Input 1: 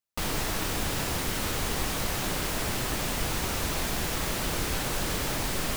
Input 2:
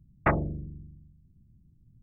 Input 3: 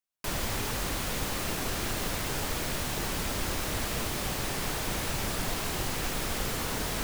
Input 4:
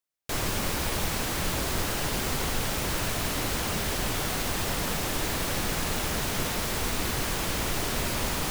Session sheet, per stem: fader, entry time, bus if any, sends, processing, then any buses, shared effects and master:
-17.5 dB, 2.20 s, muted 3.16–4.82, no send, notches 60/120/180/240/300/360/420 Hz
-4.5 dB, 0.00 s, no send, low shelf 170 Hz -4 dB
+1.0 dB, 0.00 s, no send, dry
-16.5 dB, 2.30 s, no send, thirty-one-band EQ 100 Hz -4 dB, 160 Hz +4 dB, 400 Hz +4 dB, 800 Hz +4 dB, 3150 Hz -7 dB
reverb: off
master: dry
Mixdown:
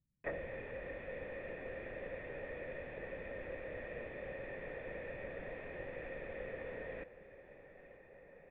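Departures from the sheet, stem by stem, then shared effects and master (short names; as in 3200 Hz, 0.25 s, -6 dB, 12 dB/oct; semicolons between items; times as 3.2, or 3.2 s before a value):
stem 4: entry 2.30 s -> 3.45 s; master: extra vocal tract filter e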